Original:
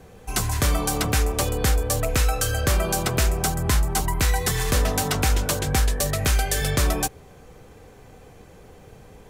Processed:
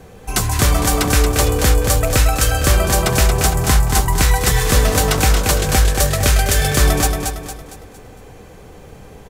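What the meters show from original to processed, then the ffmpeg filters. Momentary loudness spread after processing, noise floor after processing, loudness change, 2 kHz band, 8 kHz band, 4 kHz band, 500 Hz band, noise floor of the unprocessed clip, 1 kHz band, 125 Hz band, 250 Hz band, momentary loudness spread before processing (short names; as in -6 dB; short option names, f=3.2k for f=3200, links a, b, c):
4 LU, -40 dBFS, +7.5 dB, +7.5 dB, +7.5 dB, +7.5 dB, +7.5 dB, -48 dBFS, +7.5 dB, +7.5 dB, +7.0 dB, 2 LU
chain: -af "aecho=1:1:229|458|687|916|1145:0.562|0.231|0.0945|0.0388|0.0159,volume=6dB"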